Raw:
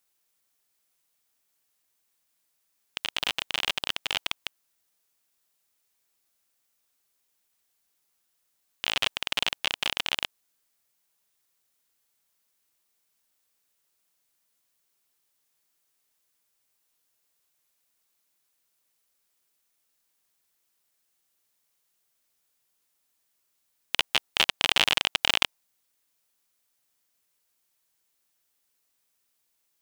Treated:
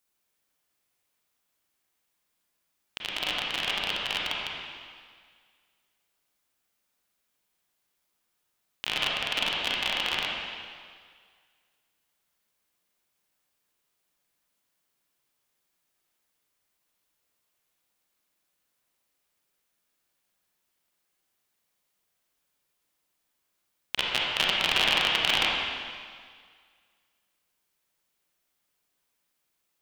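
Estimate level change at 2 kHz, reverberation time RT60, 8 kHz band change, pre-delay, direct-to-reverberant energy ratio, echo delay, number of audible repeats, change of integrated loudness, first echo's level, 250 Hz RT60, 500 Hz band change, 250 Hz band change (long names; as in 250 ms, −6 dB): +1.0 dB, 1.9 s, −3.5 dB, 30 ms, −4.0 dB, no echo audible, no echo audible, 0.0 dB, no echo audible, 1.8 s, +2.5 dB, +3.0 dB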